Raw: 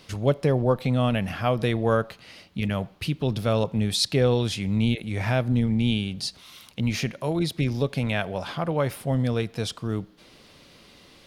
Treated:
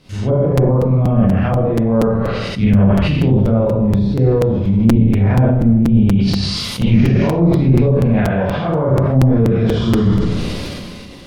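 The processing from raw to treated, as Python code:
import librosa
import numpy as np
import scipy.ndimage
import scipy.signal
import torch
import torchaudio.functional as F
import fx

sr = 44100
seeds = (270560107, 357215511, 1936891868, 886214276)

y = fx.spec_trails(x, sr, decay_s=0.87)
y = fx.rev_schroeder(y, sr, rt60_s=0.77, comb_ms=31, drr_db=-7.0)
y = fx.env_lowpass_down(y, sr, base_hz=870.0, full_db=-12.0)
y = fx.rider(y, sr, range_db=5, speed_s=0.5)
y = fx.low_shelf(y, sr, hz=330.0, db=12.0)
y = fx.buffer_crackle(y, sr, first_s=0.57, period_s=0.24, block=256, kind='repeat')
y = fx.sustainer(y, sr, db_per_s=24.0)
y = F.gain(torch.from_numpy(y), -5.5).numpy()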